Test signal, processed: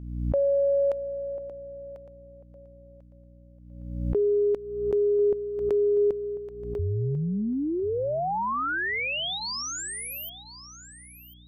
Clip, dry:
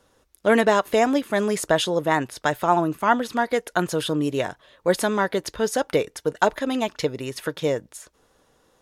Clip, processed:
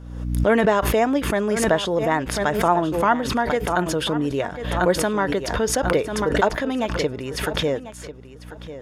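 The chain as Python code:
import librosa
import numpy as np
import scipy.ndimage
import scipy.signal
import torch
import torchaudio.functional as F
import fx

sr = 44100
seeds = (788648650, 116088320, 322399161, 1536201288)

p1 = fx.high_shelf(x, sr, hz=5200.0, db=-11.0)
p2 = fx.notch(p1, sr, hz=4000.0, q=15.0)
p3 = fx.add_hum(p2, sr, base_hz=60, snr_db=23)
p4 = p3 + fx.echo_feedback(p3, sr, ms=1044, feedback_pct=20, wet_db=-14, dry=0)
y = fx.pre_swell(p4, sr, db_per_s=51.0)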